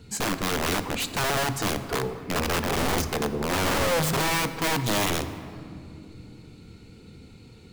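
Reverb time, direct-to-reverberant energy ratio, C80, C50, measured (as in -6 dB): 2.8 s, 10.0 dB, 12.0 dB, 11.5 dB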